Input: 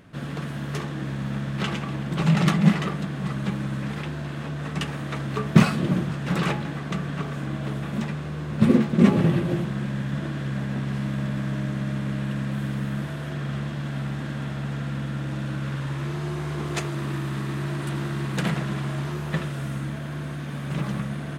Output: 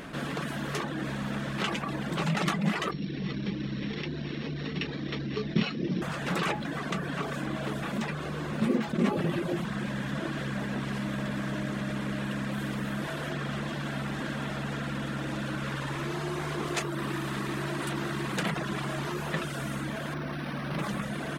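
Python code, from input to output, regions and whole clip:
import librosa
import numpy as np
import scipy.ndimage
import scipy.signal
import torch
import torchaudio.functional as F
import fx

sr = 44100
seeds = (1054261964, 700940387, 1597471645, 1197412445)

y = fx.chain(x, sr, fx.sample_sort(block=8),
    fx.lowpass(hz=3700.0, slope=24),
    fx.band_shelf(hz=940.0, db=-11.5, octaves=1.7), at=(2.91, 6.02))
y = fx.chain(y, sr, fx.cvsd(bps=32000),
    fx.notch(hz=430.0, q=12.0),
    fx.resample_linear(factor=6), at=(20.14, 20.79))
y = fx.dereverb_blind(y, sr, rt60_s=0.69)
y = fx.peak_eq(y, sr, hz=100.0, db=-14.0, octaves=1.4)
y = fx.env_flatten(y, sr, amount_pct=50)
y = F.gain(torch.from_numpy(y), -7.0).numpy()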